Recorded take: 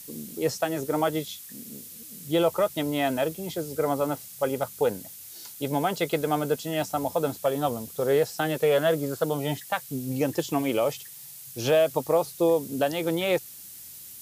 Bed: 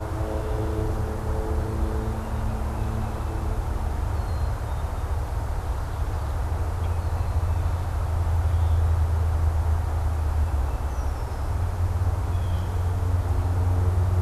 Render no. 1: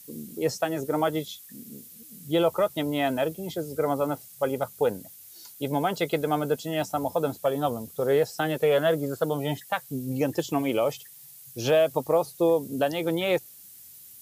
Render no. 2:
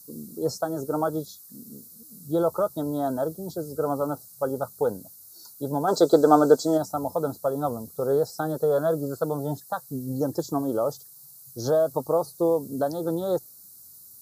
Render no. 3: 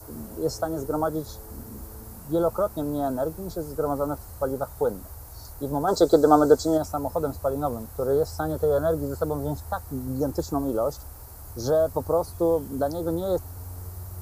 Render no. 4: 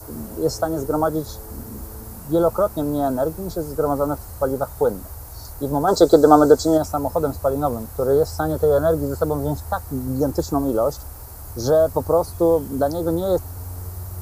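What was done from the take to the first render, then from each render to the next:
noise reduction 7 dB, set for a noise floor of -44 dBFS
5.88–6.78 s: time-frequency box 250–8600 Hz +10 dB; elliptic band-stop 1.4–4.2 kHz, stop band 70 dB
add bed -16 dB
trim +5.5 dB; peak limiter -1 dBFS, peak gain reduction 2 dB

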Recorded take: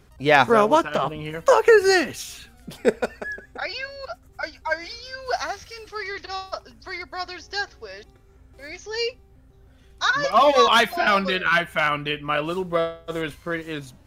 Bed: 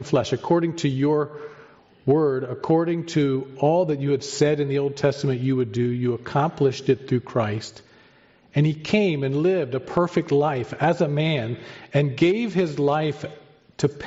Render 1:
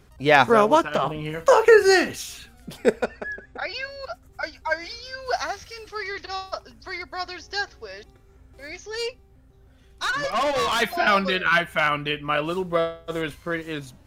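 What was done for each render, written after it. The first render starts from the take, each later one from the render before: 1.05–2.30 s: doubling 39 ms -10.5 dB; 3.04–3.74 s: distance through air 85 m; 8.81–10.82 s: valve stage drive 20 dB, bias 0.4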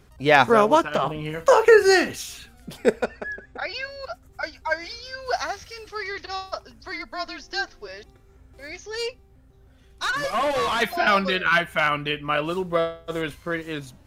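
6.92–7.88 s: frequency shift -35 Hz; 10.16–10.81 s: one-bit delta coder 64 kbps, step -36 dBFS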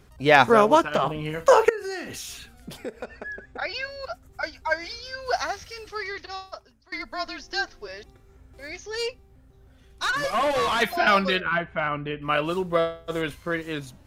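1.69–3.48 s: compression 4:1, threshold -32 dBFS; 5.91–6.92 s: fade out, to -23 dB; 11.40–12.22 s: tape spacing loss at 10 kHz 39 dB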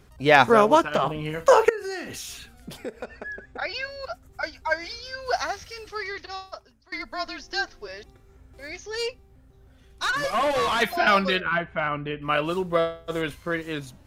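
no audible change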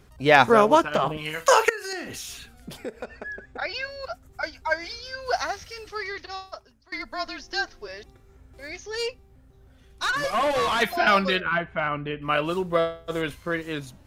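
1.17–1.93 s: tilt shelf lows -8 dB, about 920 Hz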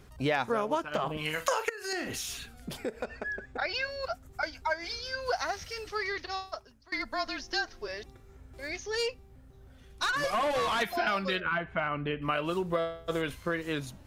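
compression 5:1, threshold -27 dBFS, peak gain reduction 14.5 dB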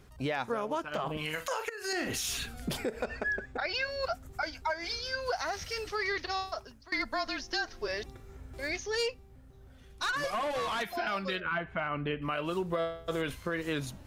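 gain riding 0.5 s; peak limiter -22.5 dBFS, peak gain reduction 8 dB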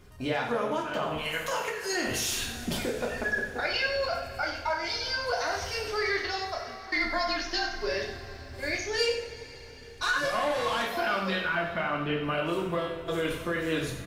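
delay 94 ms -10.5 dB; two-slope reverb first 0.43 s, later 4.4 s, from -18 dB, DRR -1.5 dB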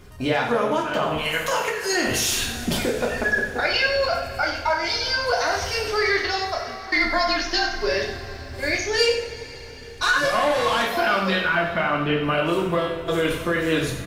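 trim +7.5 dB

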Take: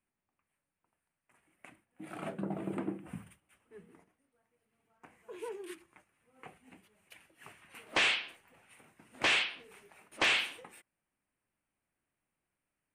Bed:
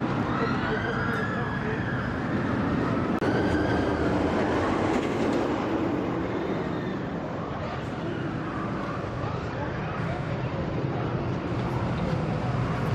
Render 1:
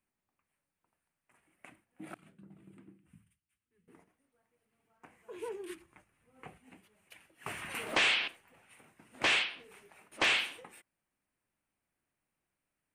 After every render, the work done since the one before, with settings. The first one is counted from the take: 2.14–3.88 s: amplifier tone stack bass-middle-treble 6-0-2; 5.36–6.60 s: bass shelf 150 Hz +10.5 dB; 7.46–8.28 s: level flattener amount 50%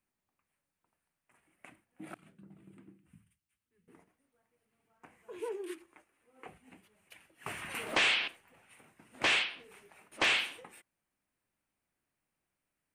5.40–6.49 s: resonant low shelf 220 Hz -12 dB, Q 1.5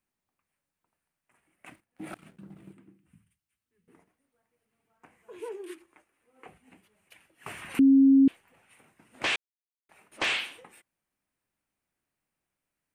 1.66–2.73 s: waveshaping leveller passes 2; 7.79–8.28 s: bleep 271 Hz -14.5 dBFS; 9.36–9.89 s: mute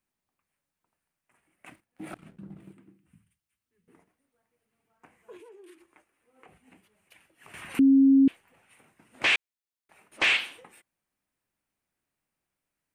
2.13–2.60 s: tilt EQ -1.5 dB/octave; 5.37–7.54 s: compression 4:1, threshold -50 dBFS; 8.09–10.37 s: dynamic bell 2.3 kHz, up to +7 dB, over -43 dBFS, Q 1.3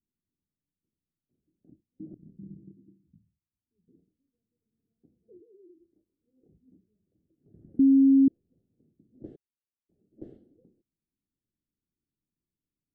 inverse Chebyshev low-pass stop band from 940 Hz, stop band 50 dB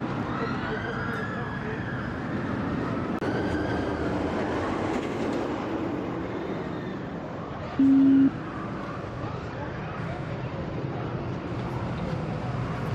add bed -3 dB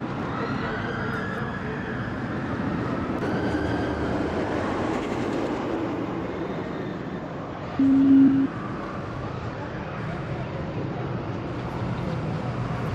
chunks repeated in reverse 180 ms, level -3 dB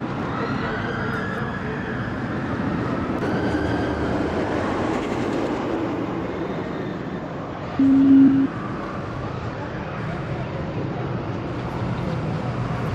trim +3 dB

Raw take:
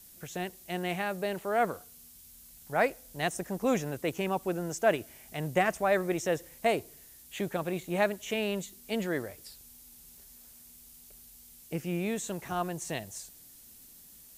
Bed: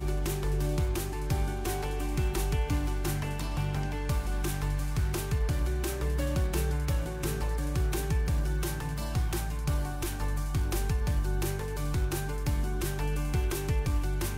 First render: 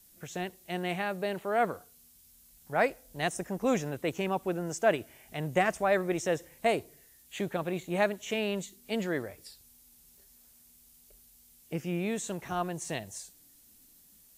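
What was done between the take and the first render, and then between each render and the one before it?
noise print and reduce 6 dB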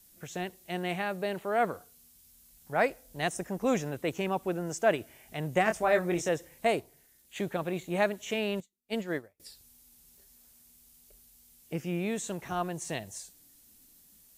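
5.64–6.29 s: doubling 23 ms -5.5 dB; 6.80–7.36 s: AM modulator 280 Hz, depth 90%; 8.60–9.40 s: upward expansion 2.5:1, over -51 dBFS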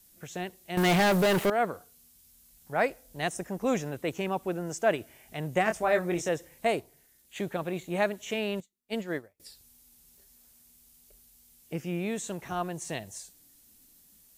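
0.77–1.50 s: waveshaping leveller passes 5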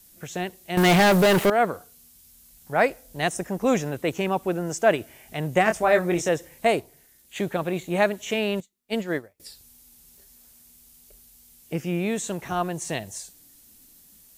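trim +6 dB

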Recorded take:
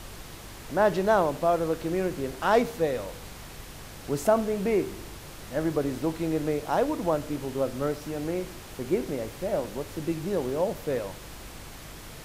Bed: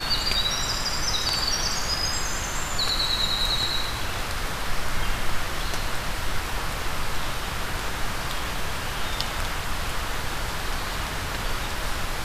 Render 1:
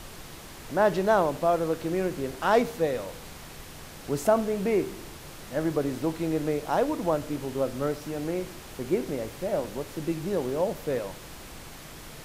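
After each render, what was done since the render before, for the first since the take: de-hum 50 Hz, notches 2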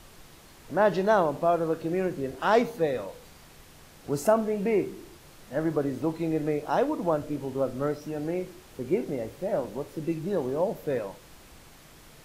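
noise print and reduce 8 dB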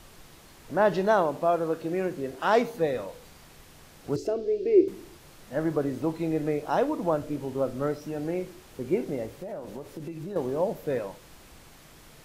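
1.11–2.74 s: bass shelf 120 Hz -8 dB; 4.16–4.88 s: FFT filter 110 Hz 0 dB, 170 Hz -27 dB, 350 Hz +10 dB, 940 Hz -22 dB, 2.8 kHz -7 dB, 4.8 kHz 0 dB, 9.8 kHz -20 dB; 9.26–10.36 s: compression, threshold -33 dBFS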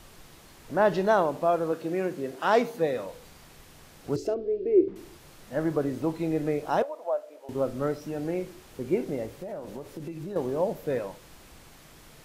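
1.72–3.05 s: high-pass 120 Hz; 4.34–4.96 s: tape spacing loss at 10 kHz 35 dB; 6.82–7.49 s: ladder high-pass 550 Hz, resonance 65%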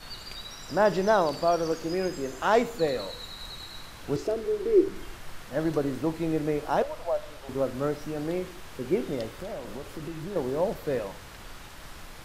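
add bed -17 dB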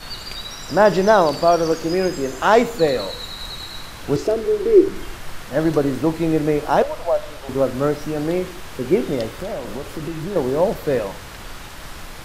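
trim +9 dB; peak limiter -2 dBFS, peak gain reduction 1.5 dB

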